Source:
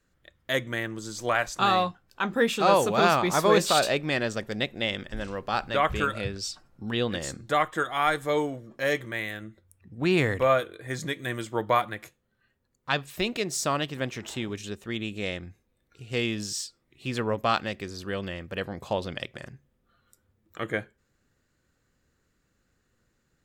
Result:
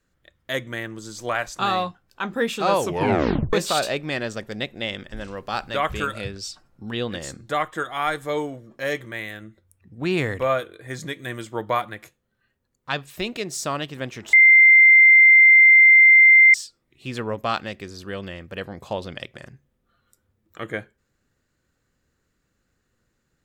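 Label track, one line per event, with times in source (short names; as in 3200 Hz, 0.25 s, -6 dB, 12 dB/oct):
2.800000	2.800000	tape stop 0.73 s
5.370000	6.310000	high shelf 4400 Hz +5.5 dB
14.330000	16.540000	bleep 2090 Hz -8 dBFS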